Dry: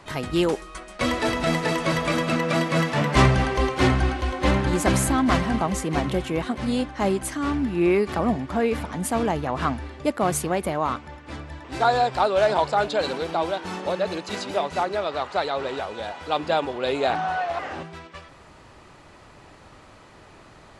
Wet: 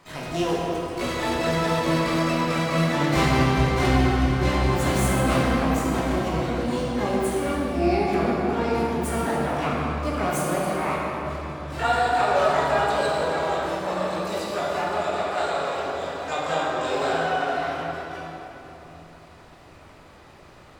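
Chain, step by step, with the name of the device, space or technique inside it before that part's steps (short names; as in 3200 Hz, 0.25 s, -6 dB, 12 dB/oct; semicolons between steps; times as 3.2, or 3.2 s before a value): shimmer-style reverb (harmoniser +12 st -6 dB; reverb RT60 3.6 s, pre-delay 11 ms, DRR -5.5 dB); gain -8 dB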